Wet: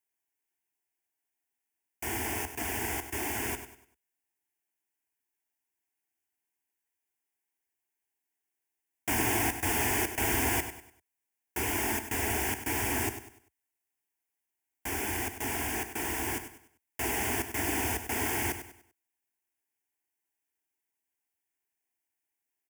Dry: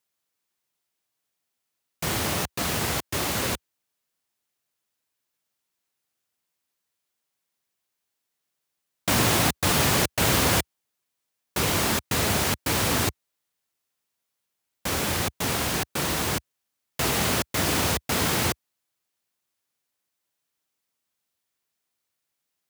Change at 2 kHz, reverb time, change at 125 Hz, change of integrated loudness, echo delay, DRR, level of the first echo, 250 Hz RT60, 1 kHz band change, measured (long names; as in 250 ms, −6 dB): −5.0 dB, no reverb audible, −10.5 dB, −6.5 dB, 98 ms, no reverb audible, −10.5 dB, no reverb audible, −6.5 dB